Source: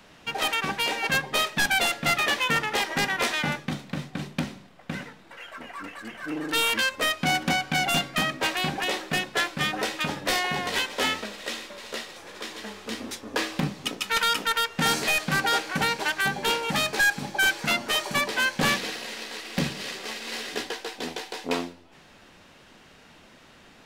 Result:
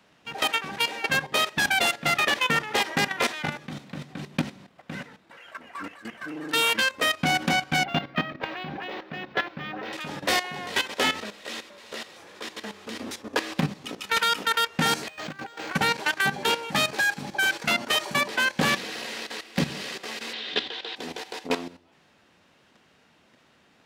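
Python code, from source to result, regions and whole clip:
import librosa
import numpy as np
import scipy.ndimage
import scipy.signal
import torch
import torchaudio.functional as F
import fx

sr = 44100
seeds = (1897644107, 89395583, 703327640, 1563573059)

y = fx.chain(x, sr, fx.air_absorb(metres=260.0),
    fx.resample_linear(factor=2), at=(7.84, 9.93))
y = fx.chain(y, sr, fx.over_compress(threshold_db=-31.0, ratio=-0.5),
    fx.resample_linear(factor=4), at=(15.08, 15.73))
y = fx.chain(y, sr, fx.lowpass_res(hz=3600.0, q=4.2),
    fx.band_squash(depth_pct=40), at=(20.33, 20.96))
y = scipy.signal.sosfilt(scipy.signal.butter(2, 80.0, 'highpass', fs=sr, output='sos'), y)
y = fx.high_shelf(y, sr, hz=5500.0, db=-3.0)
y = fx.level_steps(y, sr, step_db=13)
y = y * 10.0 ** (4.0 / 20.0)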